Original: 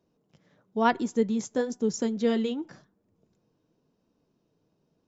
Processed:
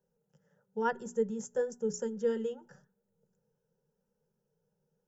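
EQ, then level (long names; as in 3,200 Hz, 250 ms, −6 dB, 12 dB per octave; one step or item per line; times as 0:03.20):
mains-hum notches 60/120/180/240/300/360/420 Hz
phaser with its sweep stopped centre 450 Hz, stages 8
phaser with its sweep stopped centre 1,100 Hz, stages 6
0.0 dB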